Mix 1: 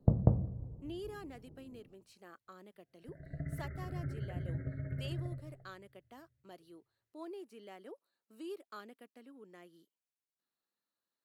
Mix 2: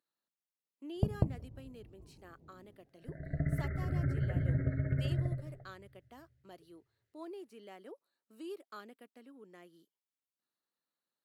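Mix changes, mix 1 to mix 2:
first sound: entry +0.95 s; second sound +9.5 dB; reverb: off

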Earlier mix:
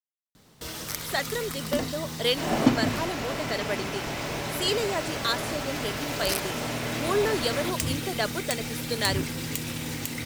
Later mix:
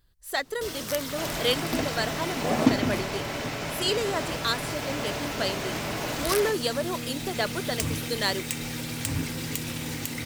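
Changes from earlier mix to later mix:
speech: entry -0.80 s; second sound: entry -1.20 s

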